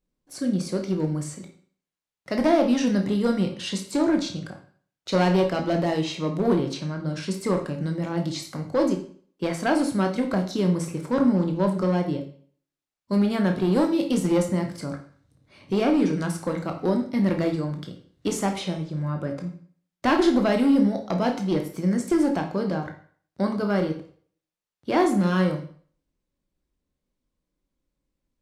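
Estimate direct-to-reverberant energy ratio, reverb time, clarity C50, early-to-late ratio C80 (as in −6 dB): 3.5 dB, 0.50 s, 9.0 dB, 13.0 dB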